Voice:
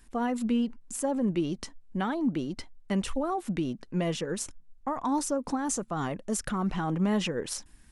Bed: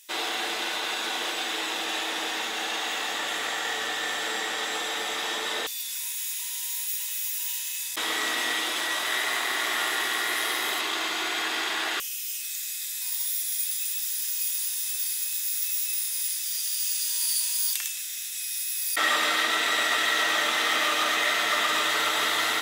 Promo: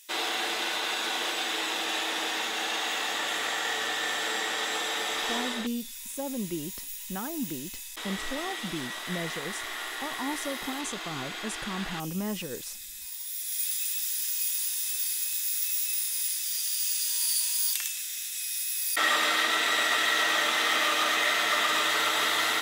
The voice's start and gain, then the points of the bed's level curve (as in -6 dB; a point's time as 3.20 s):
5.15 s, -6.0 dB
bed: 5.39 s -0.5 dB
5.72 s -9 dB
13.23 s -9 dB
13.65 s -1 dB